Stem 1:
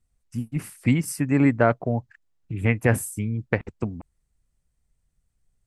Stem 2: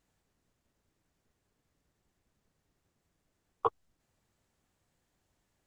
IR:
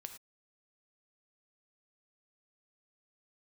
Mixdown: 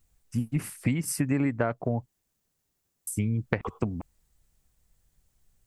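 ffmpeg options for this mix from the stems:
-filter_complex "[0:a]volume=2.5dB,asplit=3[a][b][c];[a]atrim=end=2.06,asetpts=PTS-STARTPTS,afade=t=out:st=2.056:d=0.004:c=hsin[d];[b]atrim=start=2.06:end=3.07,asetpts=PTS-STARTPTS,volume=0[e];[c]atrim=start=3.07,asetpts=PTS-STARTPTS,afade=t=in:d=0.004:c=hsin[f];[d][e][f]concat=n=3:v=0:a=1[g];[1:a]aemphasis=mode=production:type=75kf,volume=-8dB,asplit=2[h][i];[i]volume=-4dB[j];[2:a]atrim=start_sample=2205[k];[j][k]afir=irnorm=-1:irlink=0[l];[g][h][l]amix=inputs=3:normalize=0,acompressor=threshold=-22dB:ratio=12"

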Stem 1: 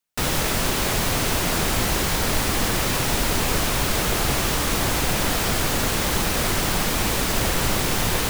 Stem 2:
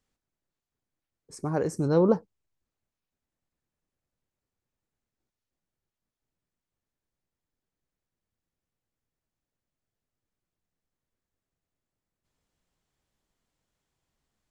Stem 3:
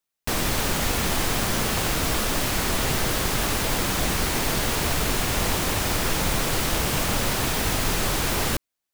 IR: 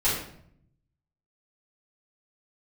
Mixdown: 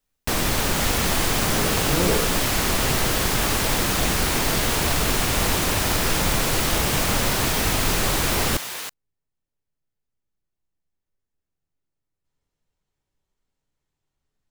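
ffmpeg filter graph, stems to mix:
-filter_complex "[0:a]highpass=f=1.3k:p=1,adelay=600,volume=-6dB[a];[1:a]volume=-7.5dB,asplit=2[b][c];[c]volume=-10dB[d];[2:a]volume=2dB[e];[3:a]atrim=start_sample=2205[f];[d][f]afir=irnorm=-1:irlink=0[g];[a][b][e][g]amix=inputs=4:normalize=0"

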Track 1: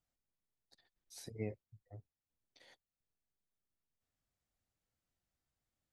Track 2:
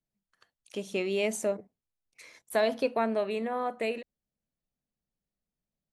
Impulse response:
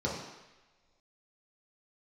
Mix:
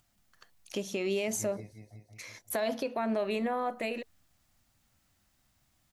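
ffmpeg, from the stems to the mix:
-filter_complex "[0:a]equalizer=f=460:w=3.6:g=-13.5,acompressor=mode=upward:threshold=-56dB:ratio=2.5,flanger=delay=8.2:depth=6.3:regen=72:speed=1.3:shape=sinusoidal,volume=-3dB,asplit=2[a][b];[b]volume=-4dB[c];[1:a]alimiter=limit=-21.5dB:level=0:latency=1:release=62,aexciter=amount=1.3:drive=4.8:freq=5.2k,bandreject=f=450:w=12,volume=-1.5dB[d];[c]aecho=0:1:179|358|537|716|895|1074|1253|1432:1|0.54|0.292|0.157|0.085|0.0459|0.0248|0.0134[e];[a][d][e]amix=inputs=3:normalize=0,acontrast=58,alimiter=limit=-22.5dB:level=0:latency=1:release=214"

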